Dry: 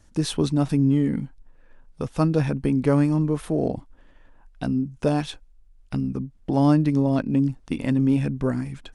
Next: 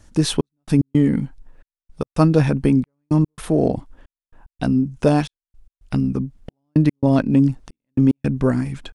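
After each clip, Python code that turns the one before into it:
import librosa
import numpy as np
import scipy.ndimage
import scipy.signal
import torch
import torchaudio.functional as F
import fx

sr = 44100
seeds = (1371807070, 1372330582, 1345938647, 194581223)

y = fx.step_gate(x, sr, bpm=111, pattern='xxx..x.xx', floor_db=-60.0, edge_ms=4.5)
y = y * 10.0 ** (6.0 / 20.0)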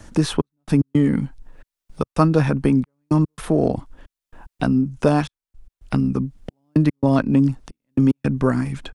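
y = fx.dynamic_eq(x, sr, hz=1200.0, q=1.6, threshold_db=-40.0, ratio=4.0, max_db=6)
y = fx.band_squash(y, sr, depth_pct=40)
y = y * 10.0 ** (-1.0 / 20.0)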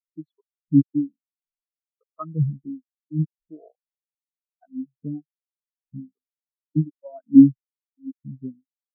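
y = fx.low_shelf(x, sr, hz=400.0, db=-4.5)
y = fx.harmonic_tremolo(y, sr, hz=1.2, depth_pct=100, crossover_hz=420.0)
y = fx.spectral_expand(y, sr, expansion=4.0)
y = y * 10.0 ** (7.0 / 20.0)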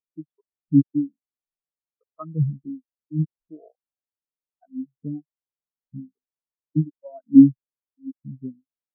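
y = scipy.signal.sosfilt(scipy.signal.butter(2, 1100.0, 'lowpass', fs=sr, output='sos'), x)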